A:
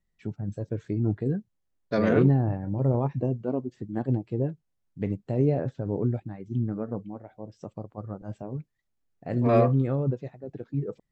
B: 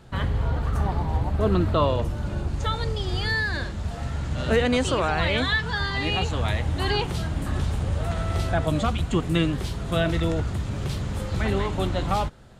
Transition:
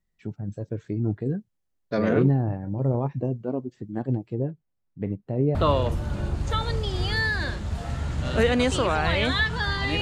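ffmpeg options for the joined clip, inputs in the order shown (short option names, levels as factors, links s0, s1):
-filter_complex "[0:a]asettb=1/sr,asplit=3[s0][s1][s2];[s0]atrim=end=4.354[s3];[s1]atrim=start=4.35:end=5.55,asetpts=PTS-STARTPTS,afade=t=in:d=0.004:c=qsin,afade=t=out:st=1.196:d=0.004:c=qsin,lowpass=f=1900:p=1[s4];[s2]atrim=start=5.546[s5];[s3][s4]acrossfade=d=0.004:c1=hsin:c2=qsin[s6];[s6][s5]acrossfade=d=0.004:c1=qsin:c2=hsin,apad=whole_dur=10.01,atrim=end=10.01,atrim=end=5.552[s7];[1:a]atrim=start=1.678:end=6.14[s8];[s7][s8]acrossfade=d=0.004:c1=hsin:c2=hsin"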